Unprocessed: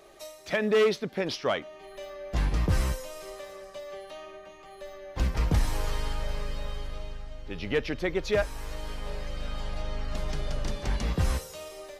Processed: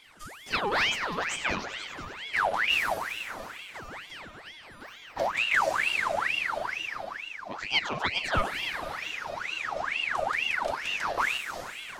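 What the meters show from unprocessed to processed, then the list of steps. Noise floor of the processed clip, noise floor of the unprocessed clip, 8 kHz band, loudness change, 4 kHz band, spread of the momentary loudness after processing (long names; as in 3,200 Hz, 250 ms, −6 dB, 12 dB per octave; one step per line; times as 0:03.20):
−48 dBFS, −49 dBFS, +1.5 dB, +2.5 dB, +7.5 dB, 16 LU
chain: rippled gain that drifts along the octave scale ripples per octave 0.53, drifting +0.5 Hz, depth 7 dB
echo machine with several playback heads 97 ms, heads all three, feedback 60%, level −14 dB
ring modulator whose carrier an LFO sweeps 1,700 Hz, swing 65%, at 2.2 Hz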